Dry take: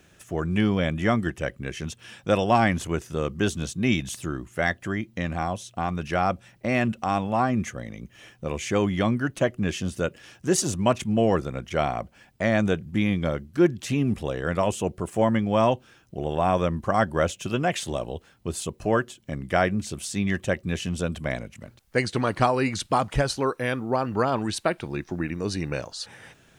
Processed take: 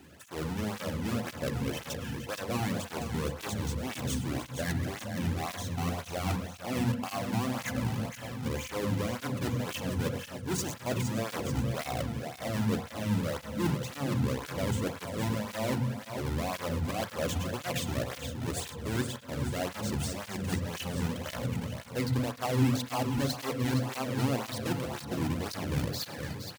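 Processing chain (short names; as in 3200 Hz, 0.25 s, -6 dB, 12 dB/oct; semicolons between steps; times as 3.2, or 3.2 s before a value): half-waves squared off; reverse; compressor 10:1, threshold -29 dBFS, peak gain reduction 18 dB; reverse; tapped delay 0.107/0.299/0.466/0.9 s -19.5/-19/-8/-12 dB; on a send at -9 dB: reverb RT60 1.2 s, pre-delay 3 ms; on the sum: tape flanging out of phase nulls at 1.9 Hz, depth 1.9 ms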